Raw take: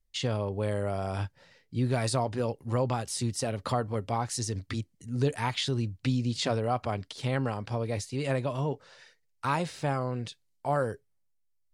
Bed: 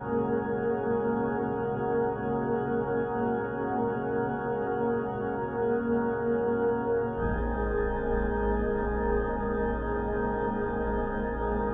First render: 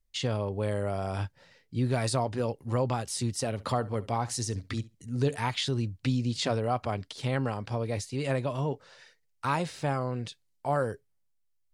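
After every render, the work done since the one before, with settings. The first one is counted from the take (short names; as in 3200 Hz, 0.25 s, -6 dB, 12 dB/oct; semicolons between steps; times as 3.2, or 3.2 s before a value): 3.53–5.42 flutter echo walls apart 11.7 m, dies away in 0.21 s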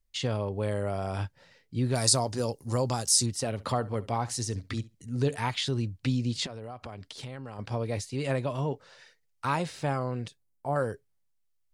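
1.95–3.26 resonant high shelf 3900 Hz +11 dB, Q 1.5; 6.46–7.59 compressor 16:1, threshold -36 dBFS; 10.28–10.76 bell 3500 Hz -12.5 dB 2.4 oct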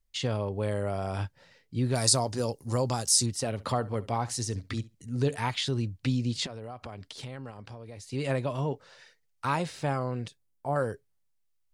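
7.5–8.11 compressor, threshold -41 dBFS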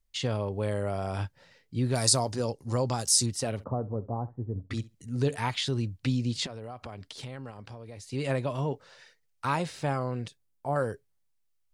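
2.36–2.99 air absorption 51 m; 3.64–4.71 Gaussian blur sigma 10 samples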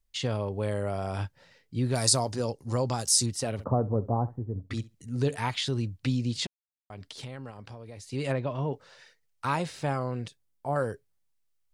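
3.59–4.39 gain +5.5 dB; 6.47–6.9 mute; 8.32–8.73 air absorption 180 m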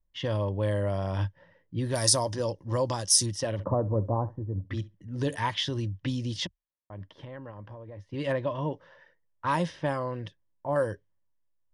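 low-pass opened by the level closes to 1100 Hz, open at -22.5 dBFS; ripple EQ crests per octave 1.2, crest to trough 9 dB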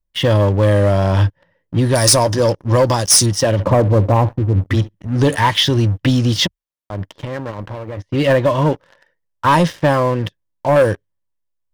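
in parallel at -3 dB: vocal rider within 4 dB 0.5 s; on the sum: sample leveller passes 3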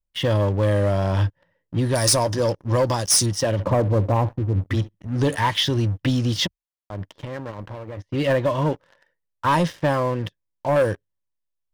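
gain -6.5 dB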